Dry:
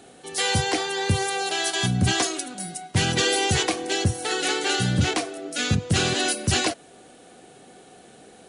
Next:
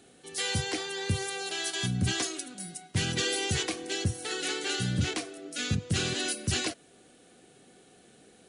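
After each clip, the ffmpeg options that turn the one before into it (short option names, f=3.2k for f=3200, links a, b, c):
-af "equalizer=f=800:t=o:w=1.2:g=-7,volume=-6.5dB"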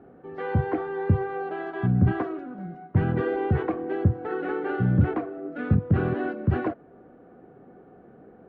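-af "lowpass=f=1.3k:w=0.5412,lowpass=f=1.3k:w=1.3066,volume=8.5dB"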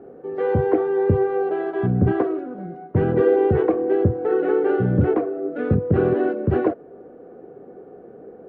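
-af "equalizer=f=450:w=1.3:g=12.5"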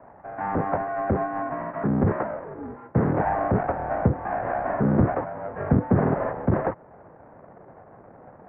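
-af "asubboost=boost=3:cutoff=240,aeval=exprs='abs(val(0))':c=same,highpass=f=200:t=q:w=0.5412,highpass=f=200:t=q:w=1.307,lowpass=f=2k:t=q:w=0.5176,lowpass=f=2k:t=q:w=0.7071,lowpass=f=2k:t=q:w=1.932,afreqshift=-100"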